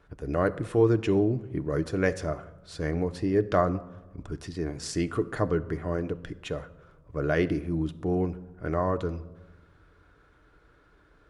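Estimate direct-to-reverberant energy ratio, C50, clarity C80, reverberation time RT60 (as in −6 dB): 9.5 dB, 17.5 dB, 19.5 dB, 1.1 s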